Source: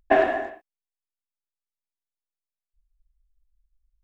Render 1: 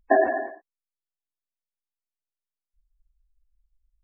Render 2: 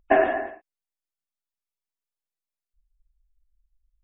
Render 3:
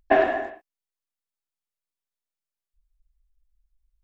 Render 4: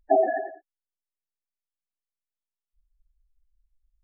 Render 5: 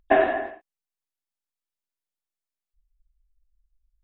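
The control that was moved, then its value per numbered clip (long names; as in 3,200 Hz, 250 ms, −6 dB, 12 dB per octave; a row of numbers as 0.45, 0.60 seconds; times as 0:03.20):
gate on every frequency bin, under each frame's peak: −20, −35, −60, −10, −45 decibels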